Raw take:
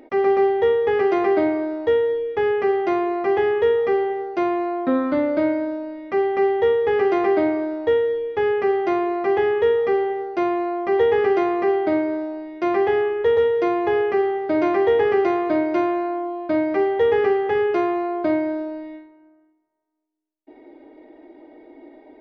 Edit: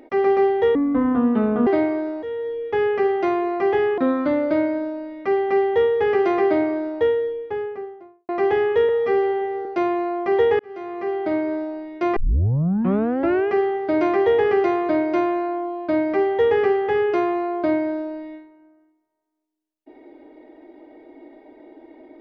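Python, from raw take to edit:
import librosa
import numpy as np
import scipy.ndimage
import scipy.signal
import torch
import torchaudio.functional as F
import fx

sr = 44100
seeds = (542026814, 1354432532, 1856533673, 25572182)

y = fx.studio_fade_out(x, sr, start_s=7.72, length_s=1.43)
y = fx.edit(y, sr, fx.speed_span(start_s=0.75, length_s=0.56, speed=0.61),
    fx.fade_in_from(start_s=1.87, length_s=0.55, floor_db=-15.0),
    fx.cut(start_s=3.62, length_s=1.22),
    fx.stretch_span(start_s=9.75, length_s=0.51, factor=1.5),
    fx.fade_in_span(start_s=11.2, length_s=0.96),
    fx.tape_start(start_s=12.77, length_s=1.35), tone=tone)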